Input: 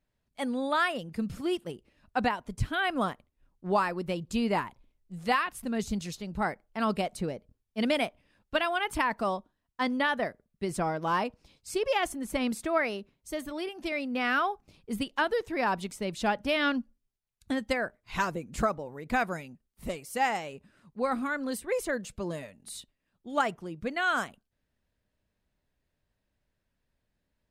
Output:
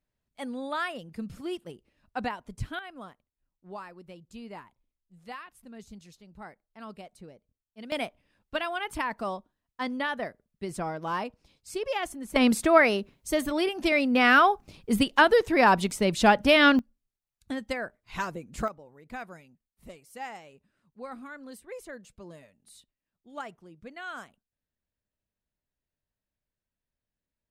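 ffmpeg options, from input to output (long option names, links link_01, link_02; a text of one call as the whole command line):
ffmpeg -i in.wav -af "asetnsamples=nb_out_samples=441:pad=0,asendcmd='2.79 volume volume -15dB;7.92 volume volume -3dB;12.36 volume volume 8.5dB;16.79 volume volume -3dB;18.68 volume volume -11.5dB',volume=-4.5dB" out.wav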